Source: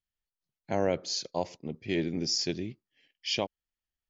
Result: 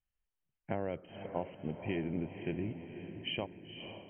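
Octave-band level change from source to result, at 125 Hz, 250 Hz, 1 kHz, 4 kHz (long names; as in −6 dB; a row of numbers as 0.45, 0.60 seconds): −2.0, −4.5, −6.5, −11.5 decibels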